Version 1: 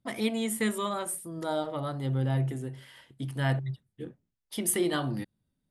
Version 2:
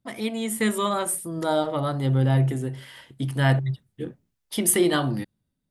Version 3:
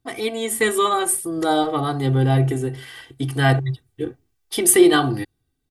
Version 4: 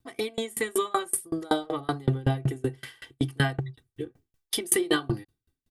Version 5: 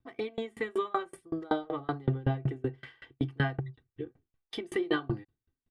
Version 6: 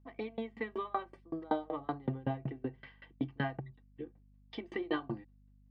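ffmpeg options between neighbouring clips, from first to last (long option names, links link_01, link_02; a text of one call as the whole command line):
ffmpeg -i in.wav -af "dynaudnorm=framelen=110:gausssize=11:maxgain=7.5dB" out.wav
ffmpeg -i in.wav -af "aecho=1:1:2.6:0.84,volume=3.5dB" out.wav
ffmpeg -i in.wav -filter_complex "[0:a]bandreject=frequency=750:width=12,asplit=2[link_01][link_02];[link_02]acompressor=threshold=-27dB:ratio=6,volume=-1.5dB[link_03];[link_01][link_03]amix=inputs=2:normalize=0,aeval=exprs='val(0)*pow(10,-31*if(lt(mod(5.3*n/s,1),2*abs(5.3)/1000),1-mod(5.3*n/s,1)/(2*abs(5.3)/1000),(mod(5.3*n/s,1)-2*abs(5.3)/1000)/(1-2*abs(5.3)/1000))/20)':channel_layout=same,volume=-1.5dB" out.wav
ffmpeg -i in.wav -af "lowpass=2500,volume=-4dB" out.wav
ffmpeg -i in.wav -af "highpass=170,equalizer=frequency=230:width_type=q:width=4:gain=5,equalizer=frequency=390:width_type=q:width=4:gain=-6,equalizer=frequency=580:width_type=q:width=4:gain=3,equalizer=frequency=970:width_type=q:width=4:gain=5,equalizer=frequency=1400:width_type=q:width=4:gain=-7,equalizer=frequency=3500:width_type=q:width=4:gain=-6,lowpass=frequency=4400:width=0.5412,lowpass=frequency=4400:width=1.3066,aeval=exprs='val(0)+0.00126*(sin(2*PI*50*n/s)+sin(2*PI*2*50*n/s)/2+sin(2*PI*3*50*n/s)/3+sin(2*PI*4*50*n/s)/4+sin(2*PI*5*50*n/s)/5)':channel_layout=same,volume=-3.5dB" out.wav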